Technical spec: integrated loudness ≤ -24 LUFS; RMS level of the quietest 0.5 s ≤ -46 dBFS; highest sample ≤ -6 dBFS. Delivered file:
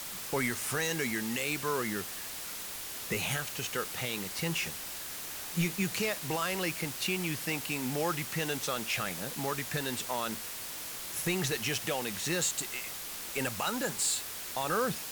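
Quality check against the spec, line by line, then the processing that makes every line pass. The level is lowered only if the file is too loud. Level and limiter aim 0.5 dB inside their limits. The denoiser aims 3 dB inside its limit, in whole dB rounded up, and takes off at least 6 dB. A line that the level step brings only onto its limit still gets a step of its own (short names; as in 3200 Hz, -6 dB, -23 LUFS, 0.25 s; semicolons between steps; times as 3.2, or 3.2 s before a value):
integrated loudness -32.5 LUFS: OK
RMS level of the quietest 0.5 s -41 dBFS: fail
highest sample -19.0 dBFS: OK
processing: denoiser 8 dB, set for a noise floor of -41 dBFS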